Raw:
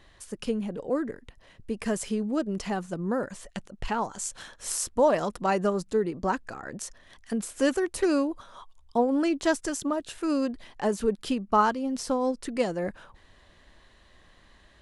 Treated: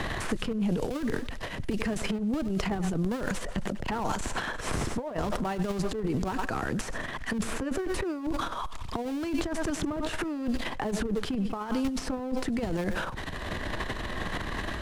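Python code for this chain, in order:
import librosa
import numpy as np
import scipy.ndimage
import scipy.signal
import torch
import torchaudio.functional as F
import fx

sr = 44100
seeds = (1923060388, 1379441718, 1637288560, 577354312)

p1 = fx.cvsd(x, sr, bps=64000)
p2 = fx.schmitt(p1, sr, flips_db=-24.5)
p3 = p1 + (p2 * 10.0 ** (-4.0 / 20.0))
p4 = fx.low_shelf(p3, sr, hz=180.0, db=4.0)
p5 = fx.echo_thinned(p4, sr, ms=95, feedback_pct=41, hz=340.0, wet_db=-23.0)
p6 = fx.over_compress(p5, sr, threshold_db=-30.0, ratio=-0.5)
p7 = fx.transient(p6, sr, attack_db=-3, sustain_db=12)
p8 = fx.high_shelf(p7, sr, hz=4300.0, db=-11.5)
p9 = fx.notch(p8, sr, hz=550.0, q=14.0)
y = fx.band_squash(p9, sr, depth_pct=100)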